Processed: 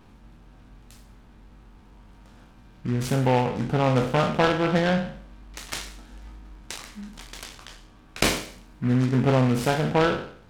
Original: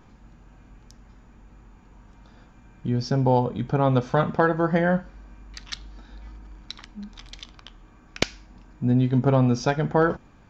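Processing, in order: spectral sustain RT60 0.57 s; 8.25–9.53 s: treble shelf 5.2 kHz +7.5 dB; delay time shaken by noise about 1.5 kHz, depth 0.063 ms; trim -1.5 dB

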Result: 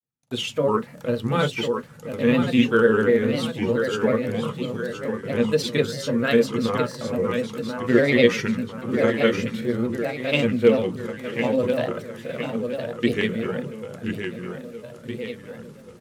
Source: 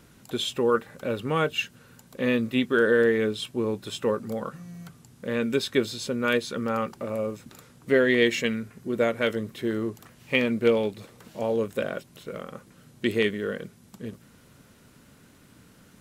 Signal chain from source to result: feedback delay 1021 ms, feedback 51%, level -6.5 dB; granulator, spray 23 ms, pitch spread up and down by 3 st; gate -49 dBFS, range -43 dB; on a send at -9.5 dB: reverberation, pre-delay 3 ms; on the sum: trim +2 dB

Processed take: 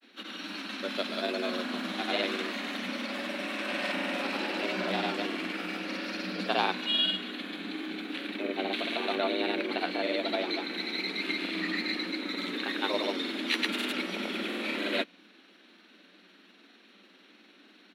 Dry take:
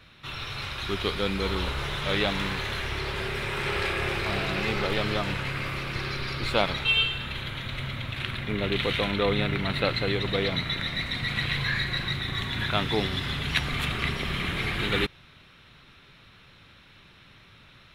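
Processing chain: granulator, pitch spread up and down by 0 st; frequency shift +180 Hz; trim -3 dB

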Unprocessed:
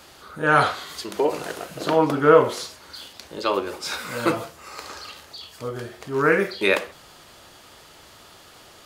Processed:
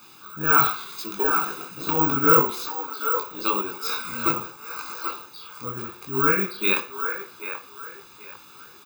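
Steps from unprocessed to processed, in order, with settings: high-pass 140 Hz 12 dB/octave; comb 0.8 ms, depth 91%; on a send: feedback echo behind a band-pass 783 ms, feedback 30%, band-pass 1 kHz, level -6 dB; on the sum: careless resampling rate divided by 2×, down filtered, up zero stuff; detune thickener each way 29 cents; trim -1.5 dB

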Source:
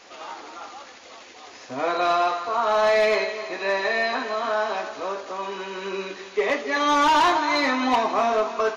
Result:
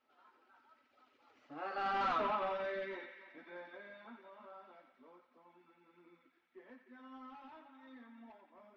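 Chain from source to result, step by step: Doppler pass-by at 2.13 s, 40 m/s, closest 2.2 m; reverb removal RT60 0.81 s; in parallel at -7 dB: bit crusher 5-bit; on the sum: overload inside the chain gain 35 dB; distance through air 260 m; small resonant body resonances 250/1300 Hz, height 14 dB, ringing for 90 ms; on a send: band-passed feedback delay 88 ms, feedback 77%, band-pass 2.2 kHz, level -7 dB; on the sum: trim +2.5 dB

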